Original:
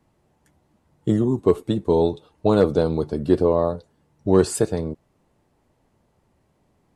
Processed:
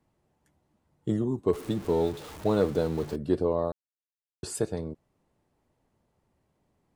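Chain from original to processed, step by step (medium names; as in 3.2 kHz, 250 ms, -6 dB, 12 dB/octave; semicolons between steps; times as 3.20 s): 1.53–3.16 s: jump at every zero crossing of -30 dBFS; 3.72–4.43 s: mute; trim -8 dB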